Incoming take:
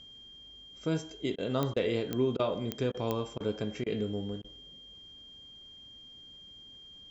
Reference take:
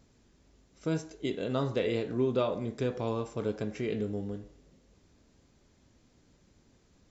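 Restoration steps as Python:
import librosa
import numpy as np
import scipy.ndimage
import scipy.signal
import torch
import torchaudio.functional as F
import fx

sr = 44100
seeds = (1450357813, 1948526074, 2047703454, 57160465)

y = fx.fix_declick_ar(x, sr, threshold=10.0)
y = fx.notch(y, sr, hz=3200.0, q=30.0)
y = fx.fix_interpolate(y, sr, at_s=(1.36, 1.74, 2.37, 2.92, 3.38, 3.84, 4.42), length_ms=22.0)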